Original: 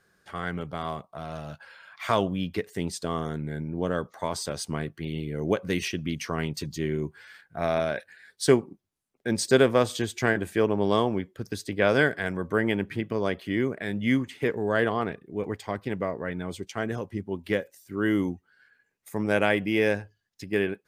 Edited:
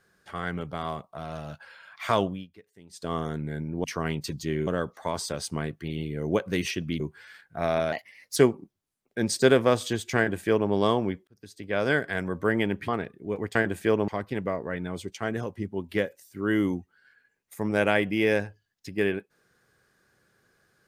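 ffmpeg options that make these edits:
ffmpeg -i in.wav -filter_complex "[0:a]asplit=12[link_01][link_02][link_03][link_04][link_05][link_06][link_07][link_08][link_09][link_10][link_11][link_12];[link_01]atrim=end=2.47,asetpts=PTS-STARTPTS,afade=type=out:start_time=2.23:duration=0.24:silence=0.0794328[link_13];[link_02]atrim=start=2.47:end=2.89,asetpts=PTS-STARTPTS,volume=-22dB[link_14];[link_03]atrim=start=2.89:end=3.842,asetpts=PTS-STARTPTS,afade=type=in:duration=0.24:silence=0.0794328[link_15];[link_04]atrim=start=6.168:end=7.002[link_16];[link_05]atrim=start=3.838:end=6.172[link_17];[link_06]atrim=start=6.998:end=7.924[link_18];[link_07]atrim=start=7.92:end=8.45,asetpts=PTS-STARTPTS,asetrate=52920,aresample=44100[link_19];[link_08]atrim=start=8.446:end=11.36,asetpts=PTS-STARTPTS,afade=type=out:start_time=2.91:duration=0.004:curve=hsin[link_20];[link_09]atrim=start=11.36:end=12.972,asetpts=PTS-STARTPTS,afade=type=in:duration=0.88[link_21];[link_10]atrim=start=14.958:end=15.632[link_22];[link_11]atrim=start=10.258:end=10.792[link_23];[link_12]atrim=start=15.628[link_24];[link_13][link_14][link_15]concat=n=3:v=0:a=1[link_25];[link_25][link_16]acrossfade=duration=0.004:curve1=hsin:curve2=hsin[link_26];[link_26][link_17]acrossfade=duration=0.004:curve1=hsin:curve2=hsin[link_27];[link_27][link_18]acrossfade=duration=0.004:curve1=hsin:curve2=hsin[link_28];[link_28][link_19]acrossfade=duration=0.004:curve1=hsin:curve2=hsin[link_29];[link_20][link_21]concat=n=2:v=0:a=1[link_30];[link_29][link_30]acrossfade=duration=0.004:curve1=hsin:curve2=hsin[link_31];[link_31][link_22]acrossfade=duration=0.004:curve1=hsin:curve2=hsin[link_32];[link_32][link_23]acrossfade=duration=0.004:curve1=hsin:curve2=hsin[link_33];[link_33][link_24]acrossfade=duration=0.004:curve1=hsin:curve2=hsin" out.wav

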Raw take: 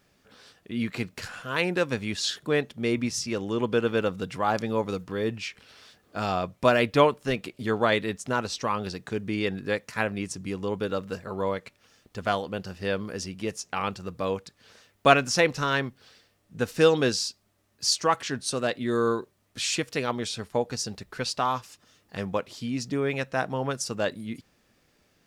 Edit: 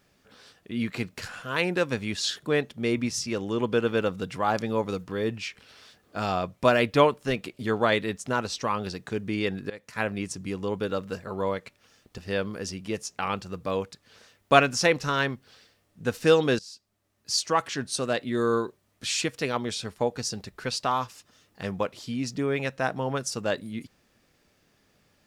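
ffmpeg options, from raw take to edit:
ffmpeg -i in.wav -filter_complex "[0:a]asplit=4[link_01][link_02][link_03][link_04];[link_01]atrim=end=9.7,asetpts=PTS-STARTPTS,afade=type=out:start_time=9.696:duration=0.004:curve=hsin:silence=0.0891251[link_05];[link_02]atrim=start=9.7:end=12.182,asetpts=PTS-STARTPTS,afade=type=in:duration=0.38:silence=0.0891251[link_06];[link_03]atrim=start=12.718:end=17.13,asetpts=PTS-STARTPTS,afade=type=out:start_time=4.408:duration=0.004:curve=hsin:silence=0.0841395[link_07];[link_04]atrim=start=17.13,asetpts=PTS-STARTPTS,afade=type=in:duration=1.38:curve=qsin:silence=0.0841395[link_08];[link_05][link_06]concat=n=2:v=0:a=1[link_09];[link_07][link_08]concat=n=2:v=0:a=1[link_10];[link_09][link_10]acrossfade=duration=0.004:curve1=hsin:curve2=hsin" out.wav

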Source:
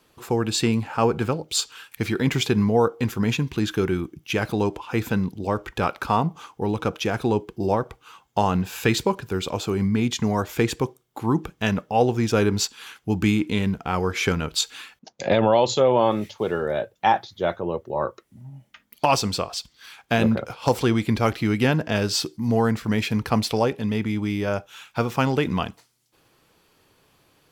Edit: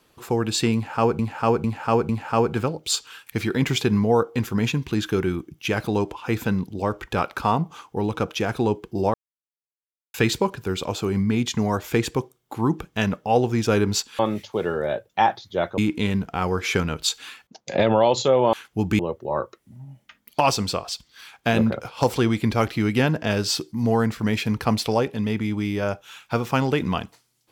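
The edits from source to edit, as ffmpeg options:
ffmpeg -i in.wav -filter_complex "[0:a]asplit=10[link_01][link_02][link_03][link_04][link_05][link_06][link_07][link_08][link_09][link_10];[link_01]atrim=end=1.192[link_11];[link_02]atrim=start=0.738:end=1.192[link_12];[link_03]atrim=start=0.738:end=1.192[link_13];[link_04]atrim=start=0.738:end=7.79,asetpts=PTS-STARTPTS,afade=type=out:start_time=7.048:duration=0.004:curve=hsin[link_14];[link_05]atrim=start=7.79:end=8.79,asetpts=PTS-STARTPTS,volume=0[link_15];[link_06]atrim=start=8.79:end=12.842,asetpts=PTS-STARTPTS,afade=type=in:duration=0.004:curve=hsin[link_16];[link_07]atrim=start=16.048:end=17.642[link_17];[link_08]atrim=start=13.298:end=16.052[link_18];[link_09]atrim=start=12.838:end=13.302[link_19];[link_10]atrim=start=17.638[link_20];[link_11][link_12]acrossfade=duration=0.004:curve1=hsin:curve2=hsin[link_21];[link_21][link_13]acrossfade=duration=0.004:curve1=hsin:curve2=hsin[link_22];[link_14][link_15][link_16]concat=n=3:v=0:a=1[link_23];[link_22][link_23]acrossfade=duration=0.004:curve1=hsin:curve2=hsin[link_24];[link_24][link_17]acrossfade=duration=0.004:curve1=hsin:curve2=hsin[link_25];[link_25][link_18]acrossfade=duration=0.004:curve1=hsin:curve2=hsin[link_26];[link_26][link_19]acrossfade=duration=0.004:curve1=hsin:curve2=hsin[link_27];[link_27][link_20]acrossfade=duration=0.004:curve1=hsin:curve2=hsin" out.wav

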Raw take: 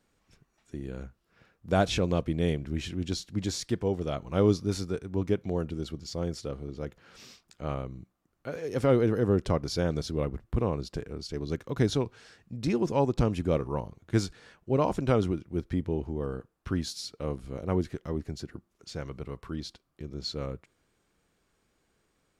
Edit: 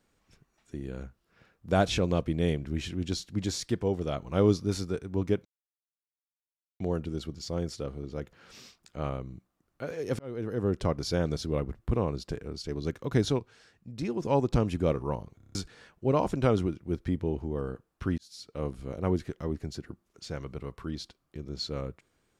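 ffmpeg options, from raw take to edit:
ffmpeg -i in.wav -filter_complex "[0:a]asplit=12[link_01][link_02][link_03][link_04][link_05][link_06][link_07][link_08][link_09][link_10][link_11][link_12];[link_01]atrim=end=5.45,asetpts=PTS-STARTPTS,afade=type=out:start_time=5.446:duration=0.004:curve=hsin,apad=pad_dur=1.35[link_13];[link_02]atrim=start=5.45:end=8.84,asetpts=PTS-STARTPTS,afade=type=in:duration=0.004:curve=hsin,afade=type=out:start_time=3.386:duration=0.004:curve=hsin[link_14];[link_03]atrim=start=8.84:end=12.042,asetpts=PTS-STARTPTS,afade=type=in:duration=1.01:curve=qsin[link_15];[link_04]atrim=start=12.038:end=12.902,asetpts=PTS-STARTPTS,volume=-5dB[link_16];[link_05]atrim=start=12.898:end=14.052[link_17];[link_06]atrim=start=14.018:end=14.052[link_18];[link_07]atrim=start=14.018:end=14.052[link_19];[link_08]atrim=start=14.018:end=14.052[link_20];[link_09]atrim=start=14.018:end=14.052[link_21];[link_10]atrim=start=14.018:end=14.052[link_22];[link_11]atrim=start=14.198:end=16.83,asetpts=PTS-STARTPTS,afade=type=out:start_time=2.628:duration=0.004:curve=hsin[link_23];[link_12]atrim=start=16.83,asetpts=PTS-STARTPTS,afade=type=in:duration=0.47[link_24];[link_13][link_14][link_15]concat=n=3:v=0:a=1[link_25];[link_25][link_16]acrossfade=duration=0.004:curve1=hsin:curve2=hsin[link_26];[link_26][link_17]acrossfade=duration=0.004:curve1=hsin:curve2=hsin[link_27];[link_27][link_18]acrossfade=duration=0.004:curve1=hsin:curve2=hsin[link_28];[link_28][link_19]acrossfade=duration=0.004:curve1=hsin:curve2=hsin[link_29];[link_29][link_20]acrossfade=duration=0.004:curve1=hsin:curve2=hsin[link_30];[link_30][link_21]acrossfade=duration=0.004:curve1=hsin:curve2=hsin[link_31];[link_31][link_22]acrossfade=duration=0.004:curve1=hsin:curve2=hsin[link_32];[link_23][link_24]concat=n=2:v=0:a=1[link_33];[link_32][link_33]acrossfade=duration=0.004:curve1=hsin:curve2=hsin" out.wav

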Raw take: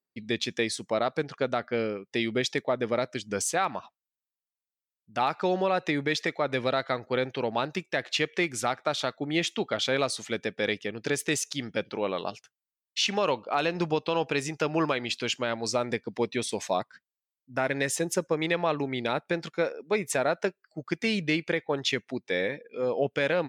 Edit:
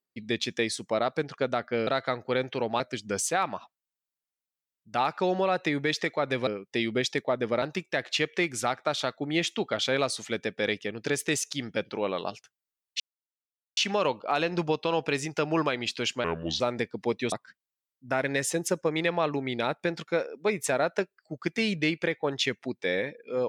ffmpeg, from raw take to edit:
ffmpeg -i in.wav -filter_complex "[0:a]asplit=9[link_01][link_02][link_03][link_04][link_05][link_06][link_07][link_08][link_09];[link_01]atrim=end=1.872[link_10];[link_02]atrim=start=6.688:end=7.622[link_11];[link_03]atrim=start=3.018:end=6.692[link_12];[link_04]atrim=start=1.868:end=3.022[link_13];[link_05]atrim=start=7.618:end=13,asetpts=PTS-STARTPTS,afade=type=out:start_time=5.378:duration=0.004:curve=hsin,apad=pad_dur=0.77[link_14];[link_06]atrim=start=13:end=15.474,asetpts=PTS-STARTPTS,afade=type=in:duration=0.004:curve=hsin[link_15];[link_07]atrim=start=15.47:end=15.73,asetpts=PTS-STARTPTS,asetrate=31752,aresample=44100[link_16];[link_08]atrim=start=15.726:end=16.452[link_17];[link_09]atrim=start=16.778[link_18];[link_10][link_11]acrossfade=duration=0.004:curve1=hsin:curve2=hsin[link_19];[link_19][link_12]acrossfade=duration=0.004:curve1=hsin:curve2=hsin[link_20];[link_20][link_13]acrossfade=duration=0.004:curve1=hsin:curve2=hsin[link_21];[link_14][link_15]concat=n=2:v=0:a=1[link_22];[link_21][link_22]acrossfade=duration=0.004:curve1=hsin:curve2=hsin[link_23];[link_23][link_16]acrossfade=duration=0.004:curve1=hsin:curve2=hsin[link_24];[link_24][link_17]acrossfade=duration=0.004:curve1=hsin:curve2=hsin[link_25];[link_25][link_18]acrossfade=duration=0.004:curve1=hsin:curve2=hsin" out.wav

